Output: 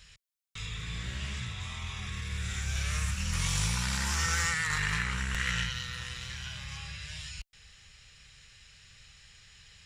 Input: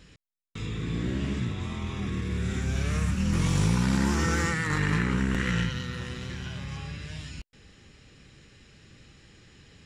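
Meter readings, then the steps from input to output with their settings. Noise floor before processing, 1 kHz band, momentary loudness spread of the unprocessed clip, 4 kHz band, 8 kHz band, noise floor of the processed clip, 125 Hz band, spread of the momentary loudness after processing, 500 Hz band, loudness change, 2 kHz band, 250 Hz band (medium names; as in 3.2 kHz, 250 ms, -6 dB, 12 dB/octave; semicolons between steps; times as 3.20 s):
-59 dBFS, -3.5 dB, 13 LU, +3.0 dB, +4.5 dB, -59 dBFS, -7.0 dB, 12 LU, -14.5 dB, -4.0 dB, 0.0 dB, -15.0 dB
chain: amplifier tone stack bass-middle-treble 10-0-10; trim +5 dB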